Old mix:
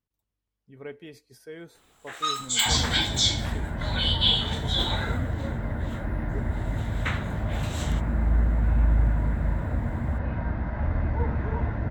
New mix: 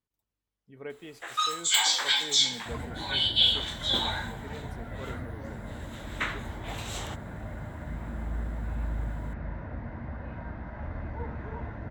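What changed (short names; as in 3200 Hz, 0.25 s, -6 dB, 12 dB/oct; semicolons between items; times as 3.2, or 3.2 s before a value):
first sound: entry -0.85 s; second sound -6.5 dB; master: add low shelf 180 Hz -5.5 dB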